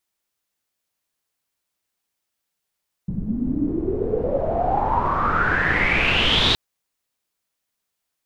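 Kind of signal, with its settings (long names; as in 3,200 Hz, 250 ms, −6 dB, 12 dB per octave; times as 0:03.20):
filter sweep on noise pink, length 3.47 s lowpass, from 180 Hz, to 3,900 Hz, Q 9, exponential, gain ramp +7 dB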